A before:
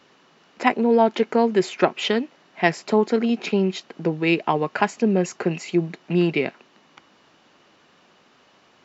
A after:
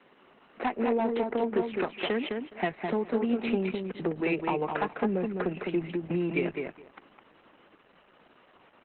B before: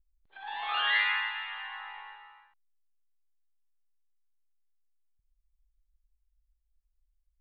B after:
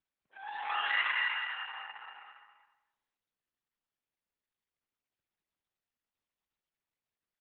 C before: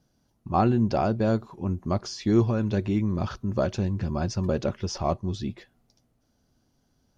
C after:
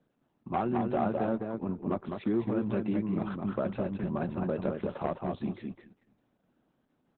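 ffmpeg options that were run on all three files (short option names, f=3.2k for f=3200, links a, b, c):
-filter_complex "[0:a]equalizer=f=3.8k:w=2.3:g=-10,acrossover=split=90|5800[a][b][c];[a]acompressor=threshold=-37dB:ratio=4[d];[b]acompressor=threshold=-25dB:ratio=4[e];[c]acompressor=threshold=-50dB:ratio=4[f];[d][e][f]amix=inputs=3:normalize=0,acrossover=split=140[g][h];[g]acrusher=bits=3:mix=0:aa=0.5[i];[i][h]amix=inputs=2:normalize=0,asoftclip=type=hard:threshold=-20.5dB,asplit=2[j][k];[k]adelay=208,lowpass=f=3.9k:p=1,volume=-4dB,asplit=2[l][m];[m]adelay=208,lowpass=f=3.9k:p=1,volume=0.18,asplit=2[n][o];[o]adelay=208,lowpass=f=3.9k:p=1,volume=0.18[p];[j][l][n][p]amix=inputs=4:normalize=0" -ar 48000 -c:a libopus -b:a 8k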